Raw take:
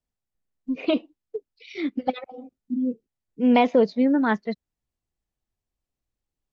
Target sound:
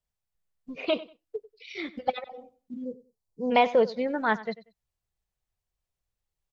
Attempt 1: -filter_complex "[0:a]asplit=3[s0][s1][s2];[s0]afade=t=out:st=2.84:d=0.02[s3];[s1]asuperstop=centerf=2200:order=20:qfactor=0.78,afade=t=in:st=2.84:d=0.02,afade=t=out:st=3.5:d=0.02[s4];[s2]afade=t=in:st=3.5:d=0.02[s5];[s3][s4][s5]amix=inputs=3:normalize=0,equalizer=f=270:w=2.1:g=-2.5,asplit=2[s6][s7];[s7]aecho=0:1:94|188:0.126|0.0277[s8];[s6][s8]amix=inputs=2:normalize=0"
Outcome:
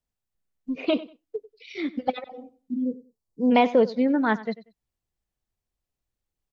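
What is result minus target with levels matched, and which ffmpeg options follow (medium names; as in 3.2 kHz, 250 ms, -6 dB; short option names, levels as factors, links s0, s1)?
250 Hz band +6.0 dB
-filter_complex "[0:a]asplit=3[s0][s1][s2];[s0]afade=t=out:st=2.84:d=0.02[s3];[s1]asuperstop=centerf=2200:order=20:qfactor=0.78,afade=t=in:st=2.84:d=0.02,afade=t=out:st=3.5:d=0.02[s4];[s2]afade=t=in:st=3.5:d=0.02[s5];[s3][s4][s5]amix=inputs=3:normalize=0,equalizer=f=270:w=2.1:g=-14,asplit=2[s6][s7];[s7]aecho=0:1:94|188:0.126|0.0277[s8];[s6][s8]amix=inputs=2:normalize=0"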